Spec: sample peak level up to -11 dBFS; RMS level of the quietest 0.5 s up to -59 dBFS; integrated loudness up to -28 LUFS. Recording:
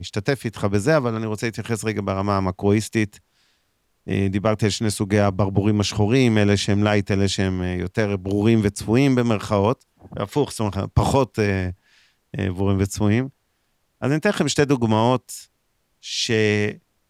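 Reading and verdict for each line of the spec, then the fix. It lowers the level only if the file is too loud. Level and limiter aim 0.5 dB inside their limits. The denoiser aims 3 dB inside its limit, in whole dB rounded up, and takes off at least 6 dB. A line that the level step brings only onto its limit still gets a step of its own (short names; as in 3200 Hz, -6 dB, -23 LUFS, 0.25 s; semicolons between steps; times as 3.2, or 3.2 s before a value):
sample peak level -4.5 dBFS: fail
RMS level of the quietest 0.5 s -69 dBFS: OK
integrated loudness -21.5 LUFS: fail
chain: gain -7 dB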